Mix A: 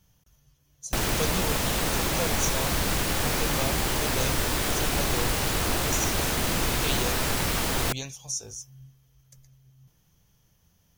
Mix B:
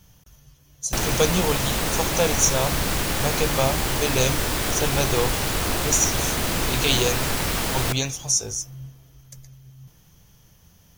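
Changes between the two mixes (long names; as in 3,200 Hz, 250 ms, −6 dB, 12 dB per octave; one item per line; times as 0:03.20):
speech +10.5 dB
reverb: on, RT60 2.9 s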